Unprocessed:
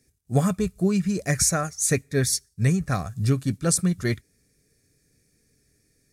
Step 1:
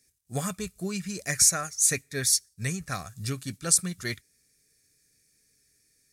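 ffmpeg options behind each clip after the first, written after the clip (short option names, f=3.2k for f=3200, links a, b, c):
-af "tiltshelf=f=1.2k:g=-7,volume=-4.5dB"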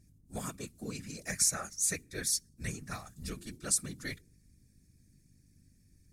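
-af "aeval=exprs='val(0)+0.00224*(sin(2*PI*50*n/s)+sin(2*PI*2*50*n/s)/2+sin(2*PI*3*50*n/s)/3+sin(2*PI*4*50*n/s)/4+sin(2*PI*5*50*n/s)/5)':c=same,bandreject=f=92.22:t=h:w=4,bandreject=f=184.44:t=h:w=4,bandreject=f=276.66:t=h:w=4,bandreject=f=368.88:t=h:w=4,afftfilt=real='hypot(re,im)*cos(2*PI*random(0))':imag='hypot(re,im)*sin(2*PI*random(1))':win_size=512:overlap=0.75,volume=-2dB"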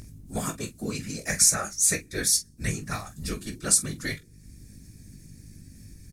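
-filter_complex "[0:a]acompressor=mode=upward:threshold=-45dB:ratio=2.5,asplit=2[a][b];[b]aecho=0:1:19|45:0.398|0.211[c];[a][c]amix=inputs=2:normalize=0,volume=8dB"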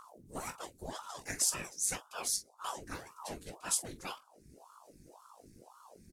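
-af "aeval=exprs='val(0)*sin(2*PI*640*n/s+640*0.85/1.9*sin(2*PI*1.9*n/s))':c=same,volume=-8.5dB"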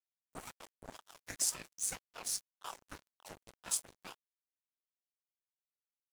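-af "aeval=exprs='sgn(val(0))*max(abs(val(0))-0.00944,0)':c=same,volume=-1dB"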